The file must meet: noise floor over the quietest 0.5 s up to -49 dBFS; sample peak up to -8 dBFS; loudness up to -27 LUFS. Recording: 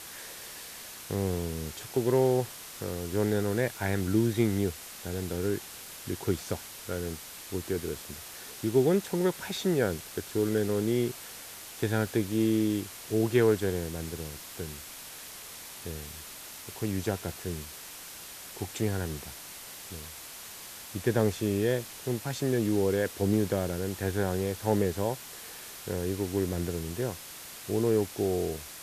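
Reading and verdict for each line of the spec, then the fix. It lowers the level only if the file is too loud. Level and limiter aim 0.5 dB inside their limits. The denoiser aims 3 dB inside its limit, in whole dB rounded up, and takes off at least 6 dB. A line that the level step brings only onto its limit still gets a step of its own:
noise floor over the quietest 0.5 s -45 dBFS: fail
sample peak -12.0 dBFS: pass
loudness -30.5 LUFS: pass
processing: noise reduction 7 dB, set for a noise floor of -45 dBFS

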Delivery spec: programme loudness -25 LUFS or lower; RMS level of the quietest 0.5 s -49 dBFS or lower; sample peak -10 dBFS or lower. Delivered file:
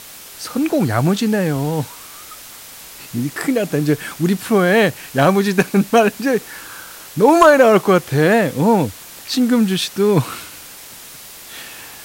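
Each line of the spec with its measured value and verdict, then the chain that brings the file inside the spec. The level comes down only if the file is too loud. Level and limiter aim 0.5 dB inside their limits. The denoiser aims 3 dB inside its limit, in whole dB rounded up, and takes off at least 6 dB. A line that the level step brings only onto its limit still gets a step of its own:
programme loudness -16.0 LUFS: fail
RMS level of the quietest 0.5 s -37 dBFS: fail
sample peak -1.5 dBFS: fail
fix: noise reduction 6 dB, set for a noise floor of -37 dBFS; trim -9.5 dB

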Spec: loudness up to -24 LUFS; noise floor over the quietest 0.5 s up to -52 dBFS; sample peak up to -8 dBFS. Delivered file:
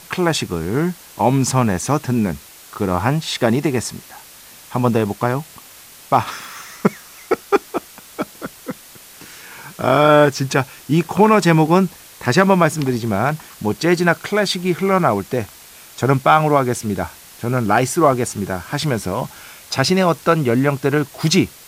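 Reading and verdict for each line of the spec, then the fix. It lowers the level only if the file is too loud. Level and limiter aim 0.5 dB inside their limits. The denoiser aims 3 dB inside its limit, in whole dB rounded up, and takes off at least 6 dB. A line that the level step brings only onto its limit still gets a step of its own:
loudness -18.0 LUFS: fail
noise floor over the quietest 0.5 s -42 dBFS: fail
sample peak -1.5 dBFS: fail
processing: noise reduction 7 dB, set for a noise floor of -42 dBFS; trim -6.5 dB; peak limiter -8.5 dBFS

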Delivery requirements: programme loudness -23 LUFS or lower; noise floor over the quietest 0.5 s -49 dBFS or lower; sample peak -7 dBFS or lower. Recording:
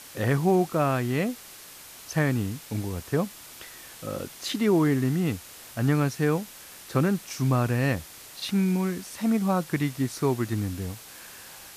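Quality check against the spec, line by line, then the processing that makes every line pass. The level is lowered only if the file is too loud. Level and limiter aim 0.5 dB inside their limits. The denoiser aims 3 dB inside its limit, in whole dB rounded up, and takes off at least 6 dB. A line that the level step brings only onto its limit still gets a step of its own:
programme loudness -26.5 LUFS: pass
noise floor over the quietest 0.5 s -46 dBFS: fail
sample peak -11.5 dBFS: pass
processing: noise reduction 6 dB, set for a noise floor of -46 dBFS

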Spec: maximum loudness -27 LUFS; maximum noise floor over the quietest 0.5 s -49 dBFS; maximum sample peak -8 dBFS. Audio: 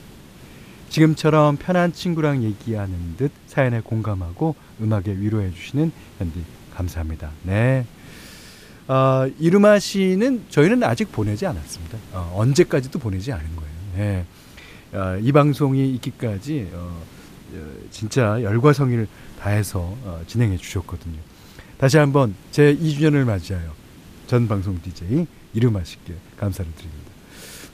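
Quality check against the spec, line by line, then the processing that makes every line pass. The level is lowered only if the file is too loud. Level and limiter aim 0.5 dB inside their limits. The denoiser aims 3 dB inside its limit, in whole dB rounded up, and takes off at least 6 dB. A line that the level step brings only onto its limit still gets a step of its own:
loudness -20.5 LUFS: fail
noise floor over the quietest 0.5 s -43 dBFS: fail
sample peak -2.0 dBFS: fail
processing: trim -7 dB

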